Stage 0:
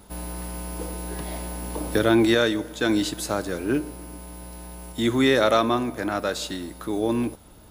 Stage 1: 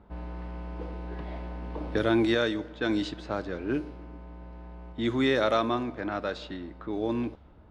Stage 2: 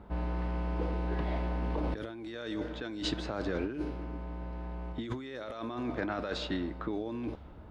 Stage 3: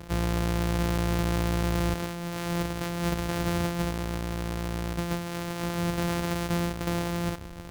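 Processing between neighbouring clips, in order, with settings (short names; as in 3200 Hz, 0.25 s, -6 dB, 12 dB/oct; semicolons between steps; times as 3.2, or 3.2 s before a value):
LPF 4800 Hz 12 dB/oct; low-pass opened by the level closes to 1600 Hz, open at -15.5 dBFS; bell 70 Hz +10 dB 0.27 oct; gain -5.5 dB
negative-ratio compressor -35 dBFS, ratio -1
sample sorter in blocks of 256 samples; soft clip -28 dBFS, distortion -17 dB; gain +8 dB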